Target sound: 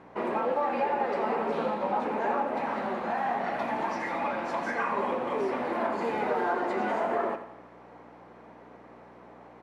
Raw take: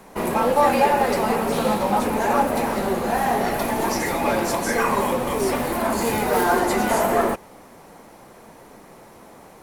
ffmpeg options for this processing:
-filter_complex "[0:a]asettb=1/sr,asplit=3[s0][s1][s2];[s0]atrim=end=2.584[s3];[s1]atrim=start=2.58:end=4.92,asetpts=PTS-STARTPTS,afade=t=in:d=0.004:c=qsin,afade=t=out:st=2.336:d=0.004:c=qsin,equalizer=f=410:w=2:g=-9[s4];[s2]atrim=start=4.916[s5];[s3][s4]acrossfade=d=0.004:c1=hsin:c2=qsin[s6];[s6][s5]acrossfade=d=0.004:c1=qsin:c2=hsin,alimiter=limit=0.211:level=0:latency=1:release=305,flanger=delay=6.9:depth=8.7:regen=-74:speed=0.37:shape=triangular,aeval=exprs='val(0)+0.00631*(sin(2*PI*60*n/s)+sin(2*PI*2*60*n/s)/2+sin(2*PI*3*60*n/s)/3+sin(2*PI*4*60*n/s)/4+sin(2*PI*5*60*n/s)/5)':c=same,highpass=260,lowpass=2300,aecho=1:1:85|170|255|340|425:0.251|0.128|0.0653|0.0333|0.017"

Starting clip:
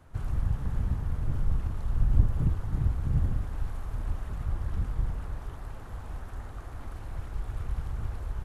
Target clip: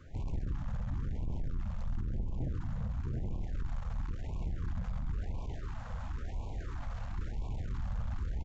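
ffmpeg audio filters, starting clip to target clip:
-af "alimiter=limit=0.0944:level=0:latency=1:release=300,aresample=16000,asoftclip=type=tanh:threshold=0.0188,aresample=44100,aecho=1:1:133:0.376,afftfilt=real='re*(1-between(b*sr/1024,310*pow(1600/310,0.5+0.5*sin(2*PI*0.97*pts/sr))/1.41,310*pow(1600/310,0.5+0.5*sin(2*PI*0.97*pts/sr))*1.41))':imag='im*(1-between(b*sr/1024,310*pow(1600/310,0.5+0.5*sin(2*PI*0.97*pts/sr))/1.41,310*pow(1600/310,0.5+0.5*sin(2*PI*0.97*pts/sr))*1.41))':win_size=1024:overlap=0.75,volume=1.33"

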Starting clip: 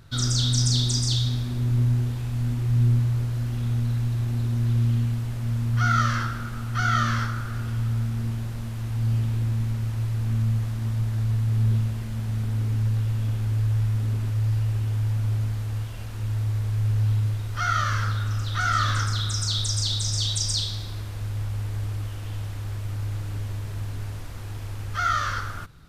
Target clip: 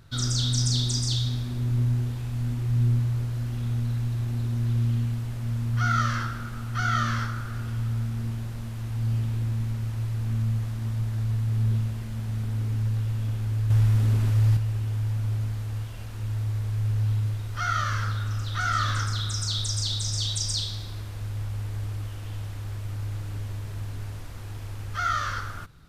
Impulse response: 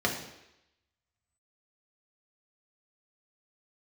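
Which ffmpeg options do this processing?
-filter_complex "[0:a]asettb=1/sr,asplit=3[s0][s1][s2];[s0]atrim=end=13.704[s3];[s1]atrim=start=13.7:end=14.57,asetpts=PTS-STARTPTS,afade=t=in:d=0.004:c=qsin,afade=t=out:st=0.866:d=0.004:c=qsin,acontrast=54[s4];[s2]atrim=start=14.566[s5];[s3][s4]acrossfade=d=0.004:c1=hsin:c2=qsin[s6];[s6][s5]acrossfade=d=0.004:c1=qsin:c2=hsin,volume=0.75"

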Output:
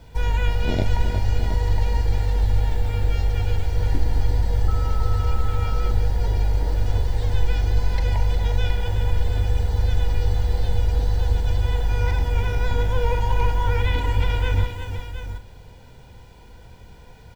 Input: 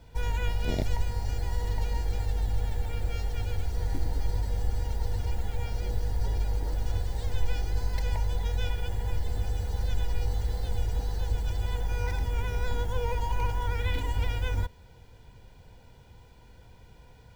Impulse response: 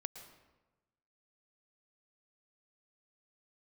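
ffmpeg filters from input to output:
-filter_complex "[0:a]aecho=1:1:359|718:0.355|0.299,asettb=1/sr,asplit=3[s0][s1][s2];[s0]atrim=end=4.684[s3];[s1]atrim=start=4.68:end=5.91,asetpts=PTS-STARTPTS,afade=t=in:d=0.004:c=qsin,afade=t=out:st=1.226:d=0.004:c=qsin,aeval=exprs='val(0)+0.01*sin(2*PI*1300*n/s)':c=same[s4];[s2]atrim=start=5.906[s5];[s3][s4]acrossfade=d=0.004:c1=hsin:c2=qsin[s6];[s6][s5]acrossfade=d=0.004:c1=qsin:c2=hsin,acrossover=split=5100[s7][s8];[s8]acompressor=threshold=0.00141:ratio=4:attack=1:release=60[s9];[s7][s9]amix=inputs=2:normalize=0,asplit=2[s10][s11];[1:a]atrim=start_sample=2205,adelay=42[s12];[s11][s12]afir=irnorm=-1:irlink=0,volume=0.376[s13];[s10][s13]amix=inputs=2:normalize=0,volume=2.11"

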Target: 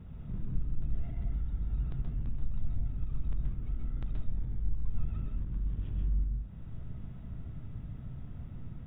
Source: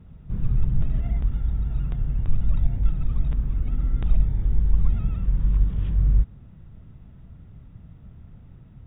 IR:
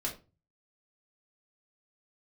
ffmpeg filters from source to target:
-filter_complex "[0:a]acompressor=threshold=0.0178:ratio=2.5,asoftclip=type=tanh:threshold=0.0316,asplit=2[s0][s1];[1:a]atrim=start_sample=2205,adelay=126[s2];[s1][s2]afir=irnorm=-1:irlink=0,volume=0.596[s3];[s0][s3]amix=inputs=2:normalize=0"

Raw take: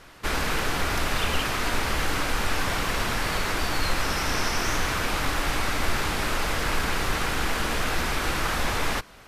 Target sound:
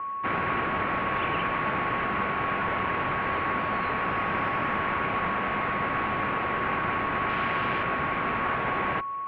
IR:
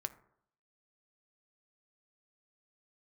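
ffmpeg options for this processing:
-filter_complex "[0:a]aeval=exprs='val(0)+0.0316*sin(2*PI*1200*n/s)':c=same,asettb=1/sr,asplit=3[s0][s1][s2];[s0]atrim=end=7.294[s3];[s1]atrim=start=7.29:end=7.83,asetpts=PTS-STARTPTS,afade=t=in:d=0.004:c=qsin,afade=t=out:st=0.536:d=0.004:c=qsin,aemphasis=mode=production:type=75fm[s4];[s2]atrim=start=7.826[s5];[s3][s4]acrossfade=d=0.004:c1=hsin:c2=qsin[s6];[s6][s5]acrossfade=d=0.004:c1=qsin:c2=hsin,highpass=f=170:t=q:w=0.5412,highpass=f=170:t=q:w=1.307,lowpass=f=2700:t=q:w=0.5176,lowpass=f=2700:t=q:w=0.7071,lowpass=f=2700:t=q:w=1.932,afreqshift=-93"

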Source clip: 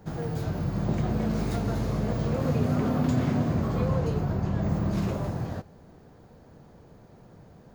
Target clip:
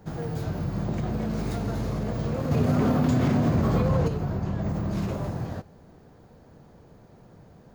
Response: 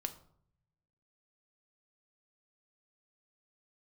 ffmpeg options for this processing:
-filter_complex "[0:a]alimiter=limit=0.1:level=0:latency=1:release=40,asettb=1/sr,asplit=3[s0][s1][s2];[s0]atrim=end=2.514[s3];[s1]atrim=start=2.51:end=4.08,asetpts=PTS-STARTPTS,afade=t=in:d=0.004:c=qsin,afade=t=out:st=1.566:d=0.004:c=qsin,acontrast=47[s4];[s2]atrim=start=4.076[s5];[s3][s4]acrossfade=d=0.004:c1=hsin:c2=qsin[s6];[s6][s5]acrossfade=d=0.004:c1=qsin:c2=hsin"

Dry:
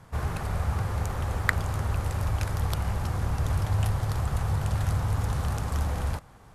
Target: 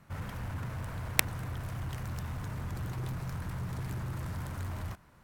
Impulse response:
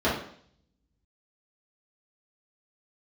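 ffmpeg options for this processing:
-af "asetrate=55125,aresample=44100,aeval=exprs='0.75*(cos(1*acos(clip(val(0)/0.75,-1,1)))-cos(1*PI/2))+0.266*(cos(3*acos(clip(val(0)/0.75,-1,1)))-cos(3*PI/2))':c=same,aeval=exprs='0.75*sin(PI/2*3.98*val(0)/0.75)':c=same"

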